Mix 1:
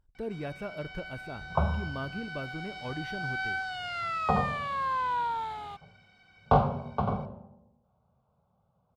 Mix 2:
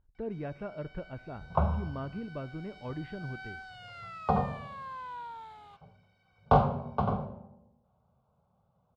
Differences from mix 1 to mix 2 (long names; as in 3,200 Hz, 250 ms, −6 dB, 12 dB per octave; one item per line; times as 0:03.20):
speech: add high-frequency loss of the air 460 metres
first sound −12.0 dB